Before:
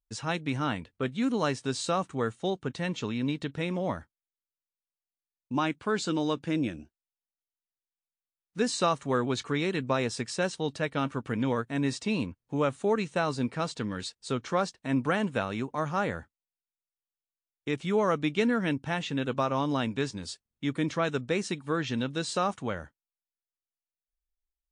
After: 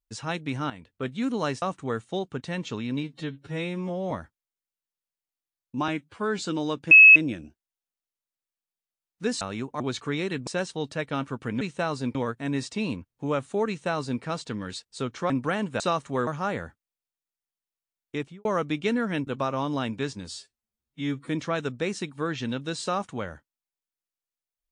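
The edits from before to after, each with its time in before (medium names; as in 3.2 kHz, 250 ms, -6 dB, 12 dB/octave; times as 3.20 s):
0.70–1.08 s: fade in, from -13 dB
1.62–1.93 s: delete
3.34–3.88 s: stretch 2×
5.65–5.99 s: stretch 1.5×
6.51 s: add tone 2.58 kHz -7.5 dBFS 0.25 s
8.76–9.23 s: swap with 15.41–15.80 s
9.90–10.31 s: delete
12.98–13.52 s: copy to 11.45 s
14.60–14.91 s: delete
17.68–17.98 s: studio fade out
18.80–19.25 s: delete
20.29–20.78 s: stretch 2×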